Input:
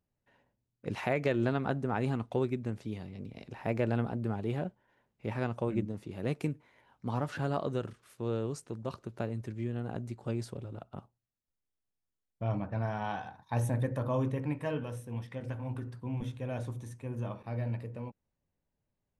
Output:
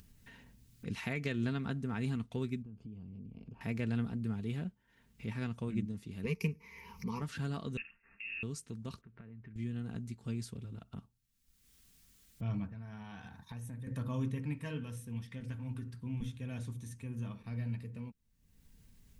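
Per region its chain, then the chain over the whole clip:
0:02.62–0:03.61: downward compressor 2.5 to 1, threshold −47 dBFS + moving average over 23 samples
0:06.24–0:07.22: EQ curve with evenly spaced ripples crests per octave 0.82, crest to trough 17 dB + upward compression, threshold −40 dBFS + highs frequency-modulated by the lows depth 0.11 ms
0:07.77–0:08.43: high-pass filter 390 Hz 24 dB per octave + voice inversion scrambler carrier 3,100 Hz + string-ensemble chorus
0:09.01–0:09.56: downward compressor 4 to 1, threshold −47 dBFS + transistor ladder low-pass 2,400 Hz, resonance 30%
0:12.67–0:13.87: parametric band 4,400 Hz −4 dB 1 octave + downward compressor 2.5 to 1, threshold −44 dBFS
whole clip: guitar amp tone stack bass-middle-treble 6-0-2; comb filter 4.4 ms, depth 38%; upward compression, threshold −56 dBFS; level +15 dB

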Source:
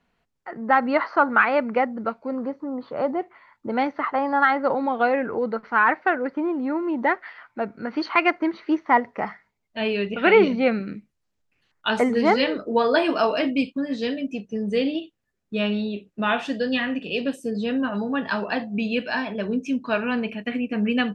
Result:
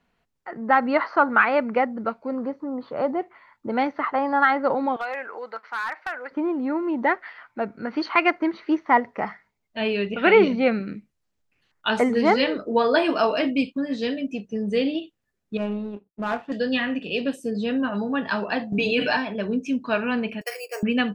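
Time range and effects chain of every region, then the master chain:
0:04.96–0:06.31: high-pass filter 880 Hz + downward compressor 3 to 1, threshold −25 dBFS + hard clipping −21.5 dBFS
0:15.57–0:16.52: low-pass filter 1,300 Hz + power curve on the samples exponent 1.4
0:18.72–0:19.17: comb filter 6.8 ms, depth 95% + envelope flattener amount 70%
0:20.41–0:20.83: linear-phase brick-wall high-pass 370 Hz + bad sample-rate conversion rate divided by 6×, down filtered, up hold
whole clip: no processing

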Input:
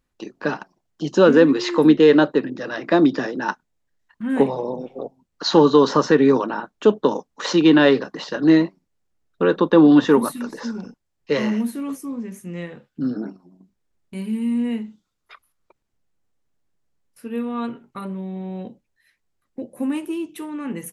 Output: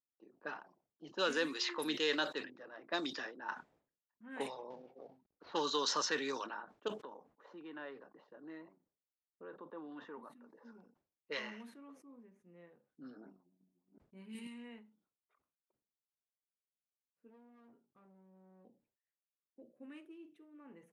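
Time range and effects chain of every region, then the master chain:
0:04.70–0:05.52: variable-slope delta modulation 32 kbit/s + low-shelf EQ 170 Hz +8.5 dB
0:06.88–0:10.65: parametric band 4,800 Hz −7.5 dB 1.6 octaves + downward compressor 2 to 1, threshold −29 dBFS
0:13.26–0:14.47: delay that plays each chunk backwards 362 ms, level −5.5 dB + low-shelf EQ 180 Hz +12 dB
0:17.29–0:18.65: low-pass filter 2,900 Hz + hard clipping −32 dBFS
0:19.63–0:20.60: parametric band 920 Hz −14.5 dB 0.62 octaves + double-tracking delay 47 ms −13.5 dB
whole clip: low-pass that shuts in the quiet parts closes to 370 Hz, open at −11 dBFS; first difference; level that may fall only so fast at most 140 dB per second

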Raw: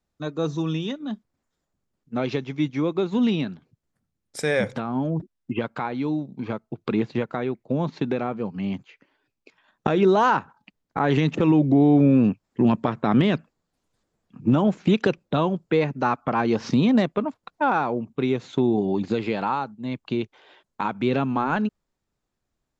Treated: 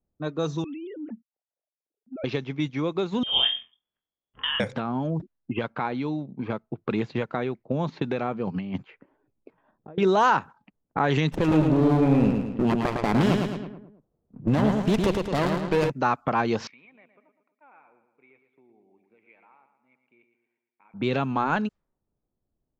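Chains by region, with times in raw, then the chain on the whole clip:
0:00.64–0:02.24: three sine waves on the formant tracks + parametric band 1,100 Hz −13.5 dB 0.56 octaves + downward compressor 3 to 1, threshold −36 dBFS
0:03.23–0:04.60: compressor whose output falls as the input rises −25 dBFS, ratio −0.5 + voice inversion scrambler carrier 3,400 Hz + flutter between parallel walls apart 4.1 metres, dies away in 0.26 s
0:08.47–0:09.98: compressor whose output falls as the input rises −30 dBFS, ratio −0.5 + notch filter 6,400 Hz, Q 14
0:11.32–0:15.90: repeating echo 108 ms, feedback 48%, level −4 dB + windowed peak hold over 17 samples
0:16.67–0:20.94: resonant band-pass 2,300 Hz, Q 13 + repeating echo 115 ms, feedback 51%, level −8.5 dB
whole clip: dynamic equaliser 270 Hz, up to −5 dB, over −28 dBFS, Q 0.97; low-pass that shuts in the quiet parts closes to 600 Hz, open at −21.5 dBFS; high-shelf EQ 6,800 Hz +5.5 dB

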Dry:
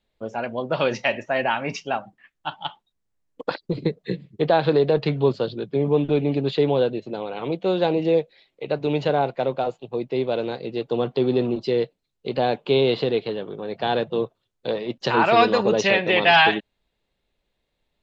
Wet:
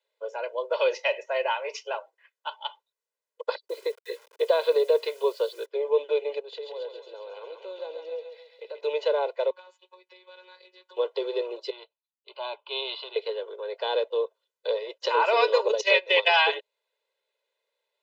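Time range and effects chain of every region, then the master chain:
0:03.68–0:05.66: notch filter 820 Hz + bit-depth reduction 8 bits, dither none
0:06.39–0:08.81: dynamic equaliser 1,800 Hz, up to −6 dB, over −46 dBFS, Q 1.7 + downward compressor 2.5 to 1, threshold −37 dBFS + feedback echo with a high-pass in the loop 136 ms, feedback 68%, high-pass 770 Hz, level −4 dB
0:09.50–0:10.97: flat-topped bell 520 Hz −14 dB 1.3 octaves + downward compressor, threshold −38 dBFS + phases set to zero 183 Hz
0:11.70–0:13.16: phaser with its sweep stopped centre 1,800 Hz, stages 6 + multiband upward and downward expander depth 70%
0:15.68–0:16.28: noise gate −20 dBFS, range −15 dB + high-shelf EQ 3,000 Hz +9 dB
whole clip: Butterworth high-pass 430 Hz 48 dB per octave; comb filter 2 ms, depth 96%; dynamic equaliser 1,600 Hz, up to −6 dB, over −38 dBFS, Q 2.3; level −5.5 dB

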